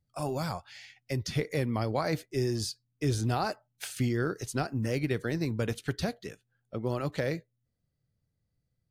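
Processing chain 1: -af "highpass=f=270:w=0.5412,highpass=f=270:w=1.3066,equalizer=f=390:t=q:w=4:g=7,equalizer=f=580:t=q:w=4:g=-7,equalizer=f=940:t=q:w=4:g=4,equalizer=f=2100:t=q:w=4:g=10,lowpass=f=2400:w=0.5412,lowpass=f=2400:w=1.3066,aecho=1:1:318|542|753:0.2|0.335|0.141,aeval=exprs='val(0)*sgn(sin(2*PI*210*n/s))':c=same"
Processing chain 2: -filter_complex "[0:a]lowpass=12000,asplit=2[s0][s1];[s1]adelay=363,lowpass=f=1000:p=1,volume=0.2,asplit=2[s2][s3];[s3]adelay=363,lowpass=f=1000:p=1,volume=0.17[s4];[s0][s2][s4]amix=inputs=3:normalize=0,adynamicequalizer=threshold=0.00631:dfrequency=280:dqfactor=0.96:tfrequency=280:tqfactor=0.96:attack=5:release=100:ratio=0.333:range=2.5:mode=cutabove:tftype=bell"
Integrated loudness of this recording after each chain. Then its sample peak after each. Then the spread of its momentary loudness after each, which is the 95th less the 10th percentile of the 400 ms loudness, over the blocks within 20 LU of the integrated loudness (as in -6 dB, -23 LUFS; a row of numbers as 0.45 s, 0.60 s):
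-32.5 LUFS, -33.5 LUFS; -15.0 dBFS, -16.5 dBFS; 11 LU, 12 LU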